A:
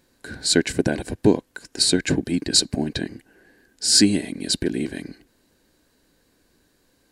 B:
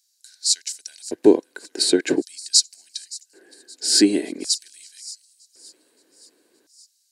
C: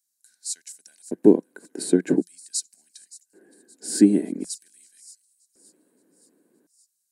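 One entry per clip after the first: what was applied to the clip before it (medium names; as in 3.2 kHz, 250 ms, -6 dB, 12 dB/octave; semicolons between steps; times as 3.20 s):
feedback echo behind a high-pass 571 ms, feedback 57%, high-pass 5.6 kHz, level -16.5 dB; LFO high-pass square 0.45 Hz 360–5600 Hz; trim -1.5 dB
FFT filter 120 Hz 0 dB, 180 Hz +12 dB, 350 Hz -1 dB, 1.6 kHz -7 dB, 2.7 kHz -14 dB, 4.7 kHz -18 dB, 9.4 kHz -4 dB; trim -1 dB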